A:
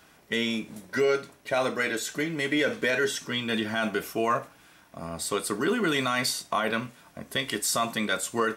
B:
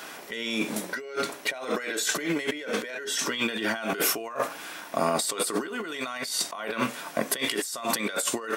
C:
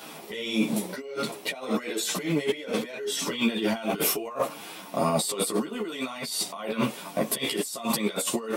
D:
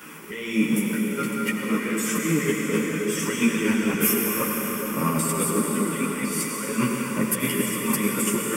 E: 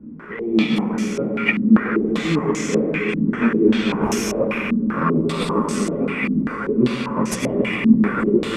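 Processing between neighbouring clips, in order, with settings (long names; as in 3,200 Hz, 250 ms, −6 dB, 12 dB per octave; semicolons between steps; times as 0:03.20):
high-pass filter 320 Hz 12 dB per octave; compressor whose output falls as the input rises −39 dBFS, ratio −1; level +8 dB
graphic EQ with 15 bands 160 Hz +8 dB, 1,600 Hz −11 dB, 6,300 Hz −5 dB; string-ensemble chorus; level +4.5 dB
phaser with its sweep stopped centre 1,700 Hz, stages 4; slack as between gear wheels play −52.5 dBFS; convolution reverb RT60 5.9 s, pre-delay 78 ms, DRR −0.5 dB; level +5 dB
in parallel at −8 dB: decimation without filtering 29×; on the sum: low-pass on a step sequencer 5.1 Hz 240–6,100 Hz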